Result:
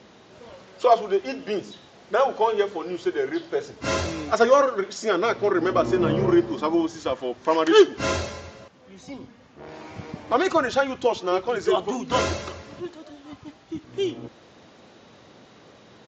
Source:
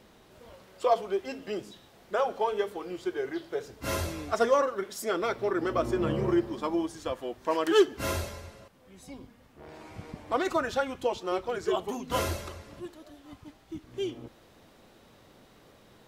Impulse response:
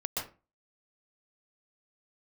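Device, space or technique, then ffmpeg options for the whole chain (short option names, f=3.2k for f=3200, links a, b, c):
Bluetooth headset: -af "highpass=100,aresample=16000,aresample=44100,volume=7dB" -ar 16000 -c:a sbc -b:a 64k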